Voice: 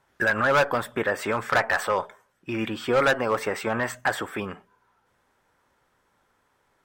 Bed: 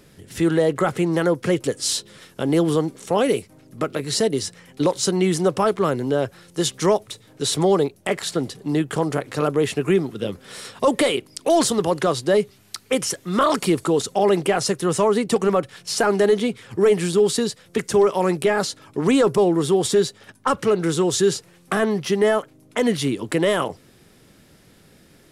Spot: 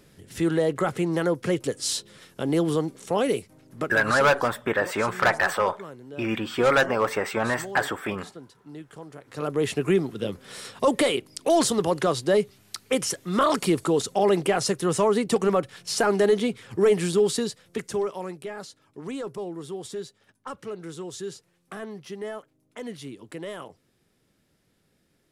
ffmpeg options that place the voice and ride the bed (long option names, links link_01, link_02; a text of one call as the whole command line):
ffmpeg -i stem1.wav -i stem2.wav -filter_complex "[0:a]adelay=3700,volume=1dB[link_01];[1:a]volume=12.5dB,afade=type=out:start_time=3.79:duration=0.56:silence=0.16788,afade=type=in:start_time=9.21:duration=0.49:silence=0.141254,afade=type=out:start_time=17.1:duration=1.25:silence=0.211349[link_02];[link_01][link_02]amix=inputs=2:normalize=0" out.wav